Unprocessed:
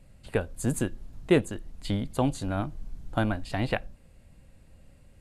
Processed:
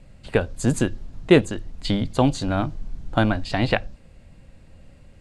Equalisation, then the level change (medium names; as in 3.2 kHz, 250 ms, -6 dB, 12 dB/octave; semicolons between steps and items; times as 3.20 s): low-pass 6.8 kHz 12 dB/octave; hum notches 50/100 Hz; dynamic bell 5 kHz, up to +5 dB, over -56 dBFS, Q 1.1; +7.0 dB